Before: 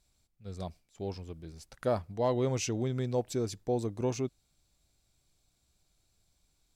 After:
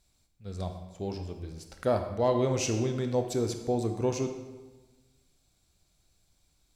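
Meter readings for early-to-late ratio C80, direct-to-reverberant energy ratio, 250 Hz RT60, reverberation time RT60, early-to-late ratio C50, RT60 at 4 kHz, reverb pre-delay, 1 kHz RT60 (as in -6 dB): 9.0 dB, 5.5 dB, 1.4 s, 1.2 s, 7.5 dB, 0.90 s, 21 ms, 1.2 s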